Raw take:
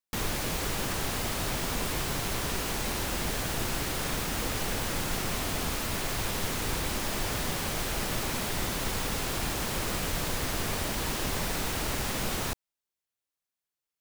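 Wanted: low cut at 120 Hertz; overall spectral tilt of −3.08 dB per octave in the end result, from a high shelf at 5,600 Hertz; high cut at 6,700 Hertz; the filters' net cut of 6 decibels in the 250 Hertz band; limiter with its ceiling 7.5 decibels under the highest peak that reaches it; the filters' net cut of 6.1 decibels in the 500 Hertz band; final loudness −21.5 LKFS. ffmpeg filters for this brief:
ffmpeg -i in.wav -af "highpass=120,lowpass=6700,equalizer=frequency=250:width_type=o:gain=-6,equalizer=frequency=500:width_type=o:gain=-6,highshelf=frequency=5600:gain=-8.5,volume=18dB,alimiter=limit=-13.5dB:level=0:latency=1" out.wav

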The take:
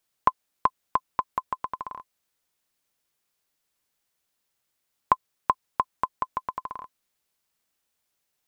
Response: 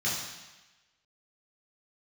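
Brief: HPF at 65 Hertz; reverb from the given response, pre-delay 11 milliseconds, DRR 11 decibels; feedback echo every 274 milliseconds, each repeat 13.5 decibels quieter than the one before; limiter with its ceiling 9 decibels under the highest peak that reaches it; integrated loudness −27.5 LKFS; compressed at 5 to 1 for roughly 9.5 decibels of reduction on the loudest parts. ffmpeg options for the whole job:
-filter_complex "[0:a]highpass=65,acompressor=threshold=-28dB:ratio=5,alimiter=limit=-18dB:level=0:latency=1,aecho=1:1:274|548:0.211|0.0444,asplit=2[link_01][link_02];[1:a]atrim=start_sample=2205,adelay=11[link_03];[link_02][link_03]afir=irnorm=-1:irlink=0,volume=-19.5dB[link_04];[link_01][link_04]amix=inputs=2:normalize=0,volume=13.5dB"

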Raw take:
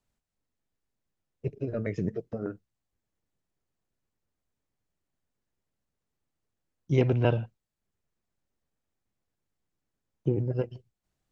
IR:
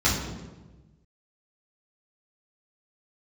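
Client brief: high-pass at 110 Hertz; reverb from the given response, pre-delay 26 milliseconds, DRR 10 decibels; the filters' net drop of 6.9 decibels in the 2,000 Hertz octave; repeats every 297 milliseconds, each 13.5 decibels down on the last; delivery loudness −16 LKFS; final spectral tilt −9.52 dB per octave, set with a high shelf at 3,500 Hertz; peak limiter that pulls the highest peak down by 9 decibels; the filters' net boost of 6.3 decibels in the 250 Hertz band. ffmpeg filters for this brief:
-filter_complex "[0:a]highpass=110,equalizer=frequency=250:width_type=o:gain=8.5,equalizer=frequency=2000:width_type=o:gain=-7,highshelf=frequency=3500:gain=-8,alimiter=limit=-17dB:level=0:latency=1,aecho=1:1:297|594:0.211|0.0444,asplit=2[link_01][link_02];[1:a]atrim=start_sample=2205,adelay=26[link_03];[link_02][link_03]afir=irnorm=-1:irlink=0,volume=-25.5dB[link_04];[link_01][link_04]amix=inputs=2:normalize=0,volume=14dB"

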